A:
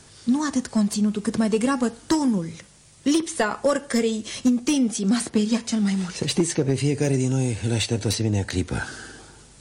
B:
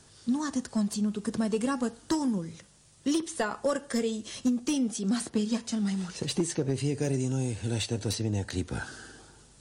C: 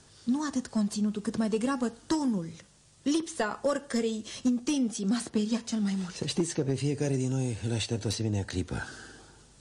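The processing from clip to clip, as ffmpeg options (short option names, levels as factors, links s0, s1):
-af "equalizer=f=2200:w=4:g=-4.5,volume=0.447"
-af "lowpass=9200"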